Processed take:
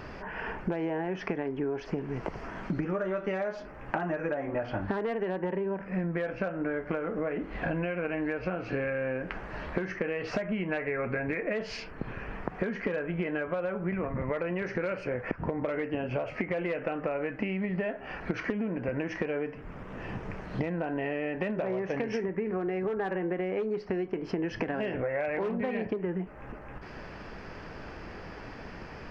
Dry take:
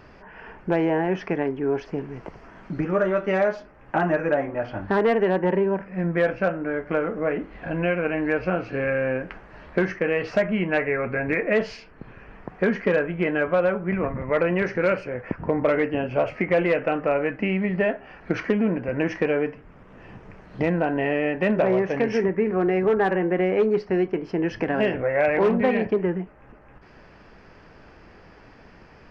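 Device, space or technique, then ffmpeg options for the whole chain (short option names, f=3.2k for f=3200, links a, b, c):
serial compression, leveller first: -af "acompressor=threshold=-23dB:ratio=2.5,acompressor=threshold=-34dB:ratio=10,volume=6dB"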